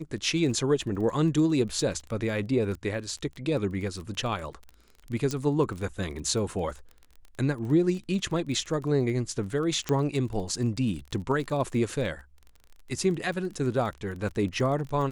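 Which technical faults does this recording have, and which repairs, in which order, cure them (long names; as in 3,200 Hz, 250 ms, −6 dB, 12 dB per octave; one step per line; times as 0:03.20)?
surface crackle 23 per second −35 dBFS
0:05.31: click −17 dBFS
0:09.89: click −14 dBFS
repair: click removal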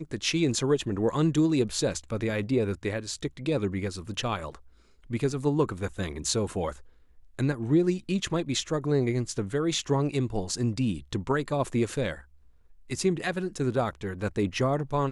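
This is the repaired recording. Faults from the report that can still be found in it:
0:05.31: click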